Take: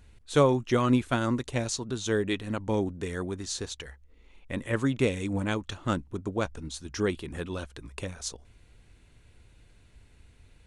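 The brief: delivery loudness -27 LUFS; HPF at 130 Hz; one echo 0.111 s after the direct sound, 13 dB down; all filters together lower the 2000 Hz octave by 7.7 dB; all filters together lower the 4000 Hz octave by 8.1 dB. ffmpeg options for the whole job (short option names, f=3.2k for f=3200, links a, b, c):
-af "highpass=130,equalizer=f=2k:t=o:g=-9,equalizer=f=4k:t=o:g=-7.5,aecho=1:1:111:0.224,volume=4dB"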